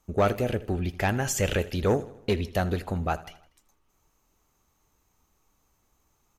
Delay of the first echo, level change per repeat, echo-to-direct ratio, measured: 80 ms, -5.5 dB, -16.5 dB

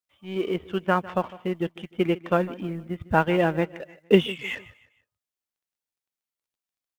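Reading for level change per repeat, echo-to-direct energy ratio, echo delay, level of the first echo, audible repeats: -8.5 dB, -18.5 dB, 0.153 s, -19.0 dB, 2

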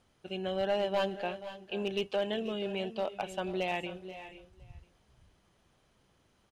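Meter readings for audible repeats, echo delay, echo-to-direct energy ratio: 3, 0.482 s, -12.5 dB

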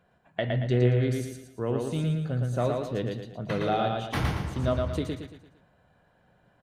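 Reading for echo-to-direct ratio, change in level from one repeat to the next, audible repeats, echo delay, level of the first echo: -2.0 dB, -7.5 dB, 5, 0.114 s, -3.0 dB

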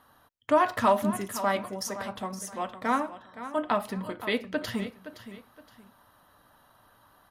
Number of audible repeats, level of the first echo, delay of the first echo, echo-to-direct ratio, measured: 2, -13.0 dB, 0.518 s, -12.5 dB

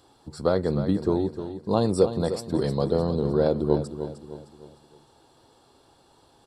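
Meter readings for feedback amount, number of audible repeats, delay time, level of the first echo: 42%, 4, 0.306 s, -10.5 dB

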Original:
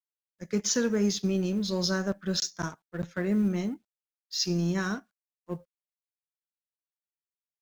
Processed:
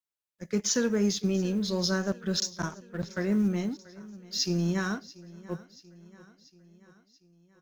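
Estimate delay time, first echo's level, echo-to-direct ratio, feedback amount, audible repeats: 0.685 s, -20.5 dB, -18.5 dB, 58%, 4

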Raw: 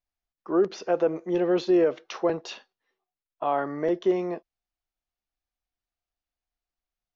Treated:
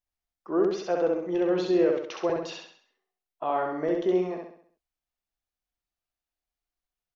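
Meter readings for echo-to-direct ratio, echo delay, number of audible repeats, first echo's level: -2.0 dB, 66 ms, 5, -3.0 dB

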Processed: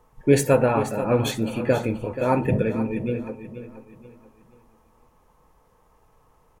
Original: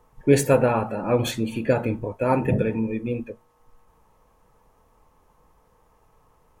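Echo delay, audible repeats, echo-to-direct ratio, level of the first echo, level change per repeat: 0.481 s, 3, -11.5 dB, -12.0 dB, -9.0 dB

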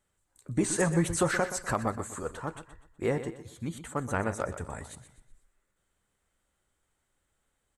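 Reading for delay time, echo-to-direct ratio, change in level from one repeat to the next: 0.124 s, -11.5 dB, -9.0 dB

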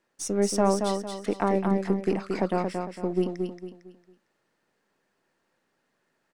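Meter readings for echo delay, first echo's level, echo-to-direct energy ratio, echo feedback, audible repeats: 0.227 s, -5.0 dB, -4.5 dB, 35%, 4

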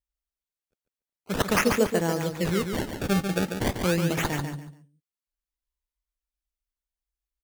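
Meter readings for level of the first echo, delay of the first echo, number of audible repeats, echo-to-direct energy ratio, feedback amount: -6.5 dB, 0.143 s, 3, -6.0 dB, 25%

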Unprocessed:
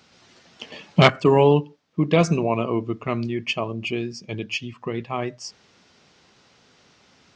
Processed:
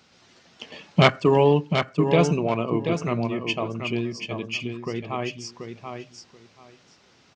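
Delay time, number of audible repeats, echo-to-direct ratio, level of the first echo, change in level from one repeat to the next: 0.733 s, 2, -7.0 dB, -7.0 dB, -15.0 dB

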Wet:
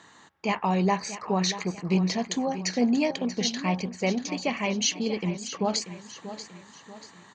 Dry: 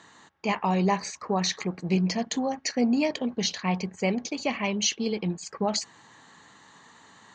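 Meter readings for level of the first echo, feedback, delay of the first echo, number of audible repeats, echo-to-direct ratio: -12.5 dB, 43%, 0.636 s, 4, -11.5 dB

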